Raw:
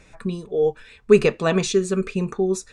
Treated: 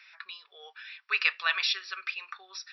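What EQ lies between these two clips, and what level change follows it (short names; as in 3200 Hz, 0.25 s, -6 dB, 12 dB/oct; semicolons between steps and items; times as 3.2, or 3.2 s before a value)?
HPF 1400 Hz 24 dB/oct; brick-wall FIR low-pass 5700 Hz; +3.0 dB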